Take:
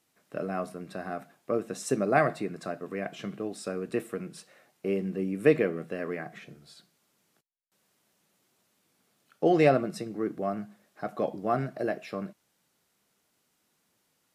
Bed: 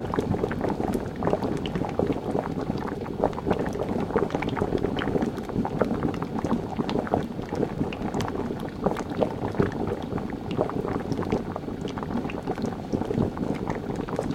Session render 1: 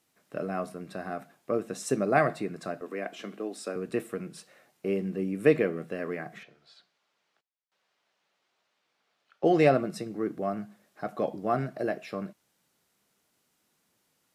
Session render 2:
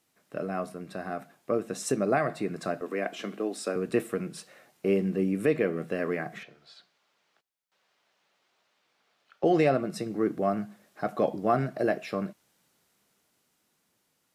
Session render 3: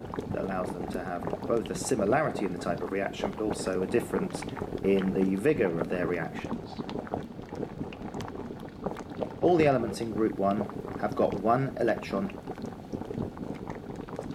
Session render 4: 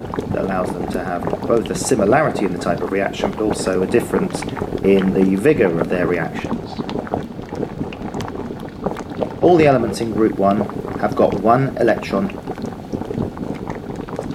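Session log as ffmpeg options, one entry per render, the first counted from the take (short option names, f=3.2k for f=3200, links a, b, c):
-filter_complex "[0:a]asettb=1/sr,asplit=3[a][b][c];[a]atrim=end=2.814[d];[b]atrim=start=2.81:end=3.76,asetpts=PTS-STARTPTS,afade=t=in:d=0.004:c=qsin,afade=t=out:st=0.946:d=0.004:c=qsin,highpass=f=230:w=0.5412,highpass=f=230:w=1.3066[e];[c]atrim=start=3.756[f];[d][e]acrossfade=d=0.004:c1=hsin:c2=qsin[g];[g][f]acrossfade=d=0.004:c1=qsin:c2=hsin,asettb=1/sr,asplit=3[h][i][j];[h]atrim=end=6.434[k];[i]atrim=start=6.43:end=9.44,asetpts=PTS-STARTPTS,afade=t=in:d=0.004:c=qsin,afade=t=out:st=3.006:d=0.004:c=qsin,acrossover=split=490 5200:gain=0.158 1 0.0708[l][m][n];[l][m][n]amix=inputs=3:normalize=0[o];[j]atrim=start=9.436[p];[k][o]acrossfade=d=0.004:c1=hsin:c2=qsin[q];[q][p]acrossfade=d=0.004:c1=qsin:c2=hsin"
-af "alimiter=limit=-17dB:level=0:latency=1:release=375,dynaudnorm=f=360:g=9:m=4dB"
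-filter_complex "[1:a]volume=-9dB[a];[0:a][a]amix=inputs=2:normalize=0"
-af "volume=11.5dB,alimiter=limit=-2dB:level=0:latency=1"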